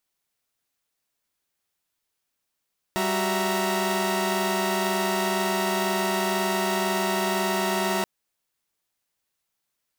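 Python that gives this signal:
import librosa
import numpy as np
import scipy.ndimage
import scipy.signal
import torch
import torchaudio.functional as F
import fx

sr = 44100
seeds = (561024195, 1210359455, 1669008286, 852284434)

y = fx.chord(sr, length_s=5.08, notes=(55, 66, 76, 82), wave='saw', level_db=-26.0)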